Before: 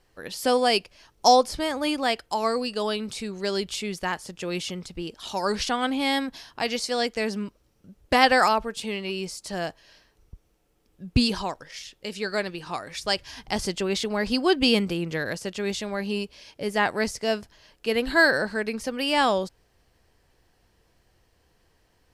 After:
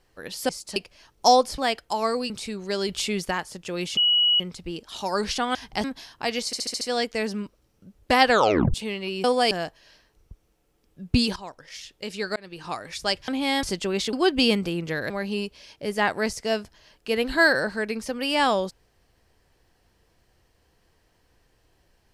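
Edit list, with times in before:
0.49–0.76 s: swap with 9.26–9.53 s
1.58–1.99 s: delete
2.71–3.04 s: delete
3.63–4.05 s: gain +4 dB
4.71 s: add tone 2.92 kHz -16.5 dBFS 0.43 s
5.86–6.21 s: swap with 13.30–13.59 s
6.83 s: stutter 0.07 s, 6 plays
8.31 s: tape stop 0.45 s
11.38–11.83 s: fade in, from -14 dB
12.38–12.67 s: fade in
14.09–14.37 s: delete
15.34–15.88 s: delete

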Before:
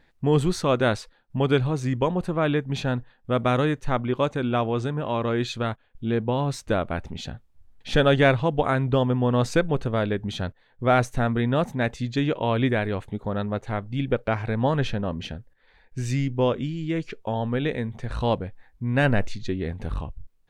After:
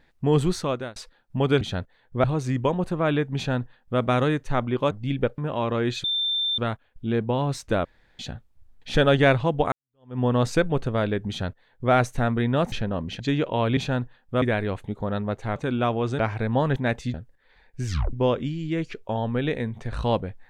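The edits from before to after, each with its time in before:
0.52–0.96 s: fade out
2.73–3.38 s: copy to 12.66 s
4.28–4.91 s: swap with 13.80–14.27 s
5.57 s: add tone 3.57 kHz -22 dBFS 0.54 s
6.84–7.18 s: room tone
8.71–9.18 s: fade in exponential
10.28–10.91 s: copy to 1.61 s
11.71–12.09 s: swap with 14.84–15.32 s
16.04 s: tape stop 0.27 s

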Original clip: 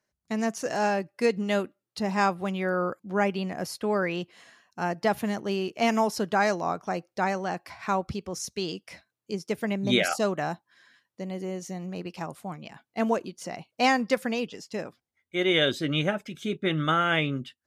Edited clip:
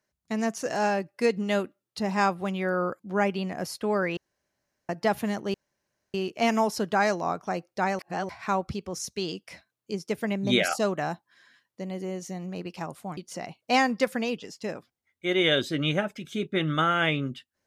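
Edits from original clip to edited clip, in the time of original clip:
4.17–4.89 s: room tone
5.54 s: insert room tone 0.60 s
7.39–7.69 s: reverse
12.57–13.27 s: delete

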